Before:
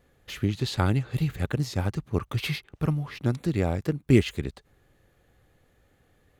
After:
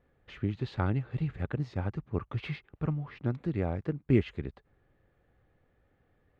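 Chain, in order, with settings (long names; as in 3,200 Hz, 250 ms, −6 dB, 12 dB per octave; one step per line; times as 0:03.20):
low-pass filter 2,200 Hz 12 dB per octave
level −5.5 dB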